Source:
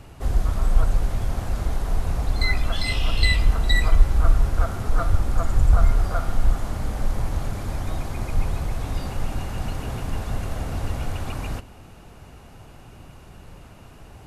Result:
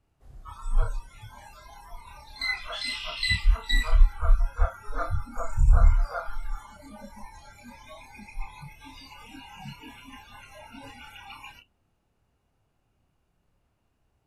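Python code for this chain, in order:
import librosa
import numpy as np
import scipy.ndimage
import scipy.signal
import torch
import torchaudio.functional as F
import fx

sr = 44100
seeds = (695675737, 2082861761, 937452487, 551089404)

y = fx.doubler(x, sr, ms=29.0, db=-4)
y = fx.noise_reduce_blind(y, sr, reduce_db=25)
y = y * 10.0 ** (-4.0 / 20.0)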